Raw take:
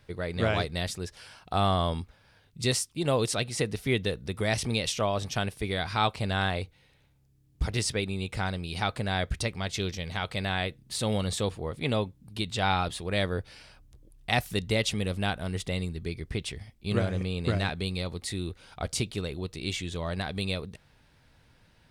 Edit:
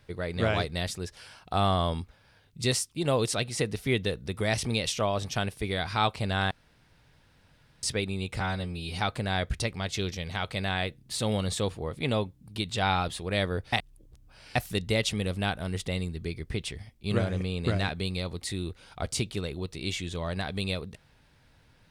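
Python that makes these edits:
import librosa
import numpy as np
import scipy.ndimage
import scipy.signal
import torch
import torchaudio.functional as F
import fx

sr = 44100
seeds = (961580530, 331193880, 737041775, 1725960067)

y = fx.edit(x, sr, fx.room_tone_fill(start_s=6.51, length_s=1.32),
    fx.stretch_span(start_s=8.4, length_s=0.39, factor=1.5),
    fx.reverse_span(start_s=13.53, length_s=0.83), tone=tone)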